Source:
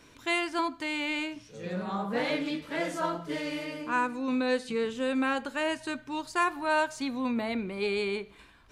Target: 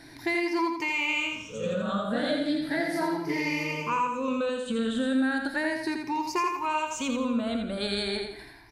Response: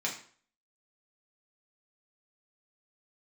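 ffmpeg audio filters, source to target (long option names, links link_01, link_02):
-af "afftfilt=real='re*pow(10,16/40*sin(2*PI*(0.78*log(max(b,1)*sr/1024/100)/log(2)-(0.36)*(pts-256)/sr)))':imag='im*pow(10,16/40*sin(2*PI*(0.78*log(max(b,1)*sr/1024/100)/log(2)-(0.36)*(pts-256)/sr)))':win_size=1024:overlap=0.75,acompressor=threshold=-30dB:ratio=6,aecho=1:1:84|168|252|336|420:0.562|0.219|0.0855|0.0334|0.013,volume=4dB"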